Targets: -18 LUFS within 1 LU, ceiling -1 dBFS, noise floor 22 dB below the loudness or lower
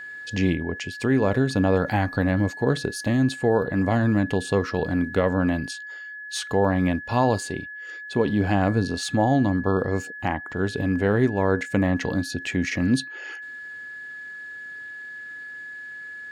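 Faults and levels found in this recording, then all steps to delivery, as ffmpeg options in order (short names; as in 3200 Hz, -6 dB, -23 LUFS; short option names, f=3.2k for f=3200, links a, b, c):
steady tone 1700 Hz; tone level -35 dBFS; loudness -23.5 LUFS; peak -8.5 dBFS; loudness target -18.0 LUFS
-> -af "bandreject=f=1.7k:w=30"
-af "volume=5.5dB"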